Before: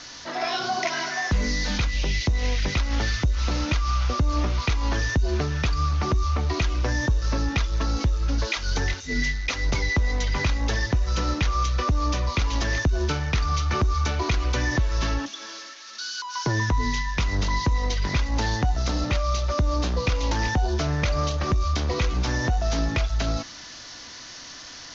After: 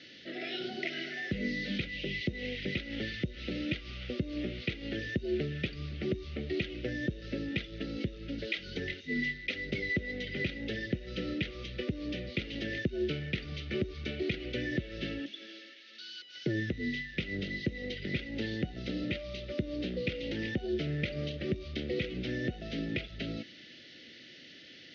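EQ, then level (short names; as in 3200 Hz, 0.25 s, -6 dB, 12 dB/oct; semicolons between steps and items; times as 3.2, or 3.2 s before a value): Butterworth band-stop 1000 Hz, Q 0.56; speaker cabinet 270–2700 Hz, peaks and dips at 280 Hz -7 dB, 450 Hz -5 dB, 690 Hz -8 dB, 1100 Hz -6 dB, 1600 Hz -8 dB, 2400 Hz -7 dB; +4.0 dB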